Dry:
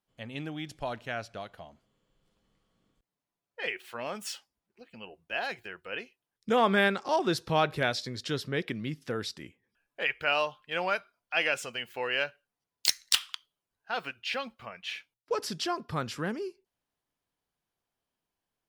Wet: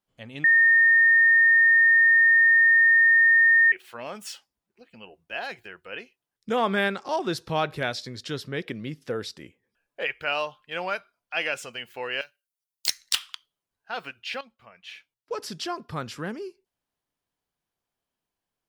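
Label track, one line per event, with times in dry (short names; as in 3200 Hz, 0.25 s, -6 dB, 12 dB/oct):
0.440000	3.720000	bleep 1830 Hz -14 dBFS
8.660000	10.110000	bell 510 Hz +5.5 dB
12.210000	12.870000	pre-emphasis coefficient 0.9
14.410000	15.580000	fade in, from -13 dB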